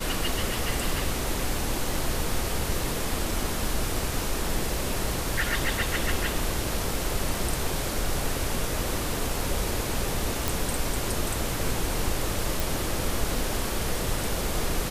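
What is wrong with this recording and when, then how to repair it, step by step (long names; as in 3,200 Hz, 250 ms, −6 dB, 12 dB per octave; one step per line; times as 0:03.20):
0:10.48: click
0:12.60: click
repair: click removal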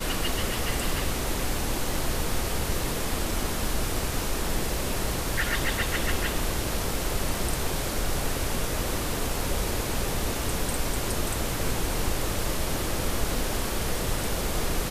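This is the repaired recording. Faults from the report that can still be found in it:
none of them is left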